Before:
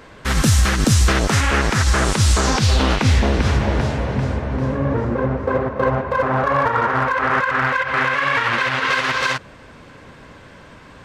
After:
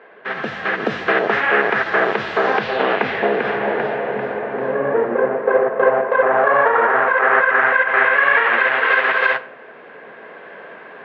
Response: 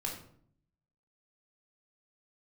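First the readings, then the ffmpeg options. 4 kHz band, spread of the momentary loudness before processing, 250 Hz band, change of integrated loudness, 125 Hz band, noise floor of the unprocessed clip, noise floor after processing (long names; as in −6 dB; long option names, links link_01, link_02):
−7.0 dB, 6 LU, −6.0 dB, +1.5 dB, −21.0 dB, −43 dBFS, −40 dBFS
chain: -filter_complex "[0:a]dynaudnorm=framelen=460:gausssize=3:maxgain=8.5dB,highpass=frequency=230:width=0.5412,highpass=frequency=230:width=1.3066,equalizer=frequency=280:width_type=q:width=4:gain=-10,equalizer=frequency=430:width_type=q:width=4:gain=7,equalizer=frequency=680:width_type=q:width=4:gain=8,equalizer=frequency=1700:width_type=q:width=4:gain=7,lowpass=frequency=2900:width=0.5412,lowpass=frequency=2900:width=1.3066,asplit=2[link_01][link_02];[1:a]atrim=start_sample=2205,lowpass=6100[link_03];[link_02][link_03]afir=irnorm=-1:irlink=0,volume=-10dB[link_04];[link_01][link_04]amix=inputs=2:normalize=0,volume=-6.5dB"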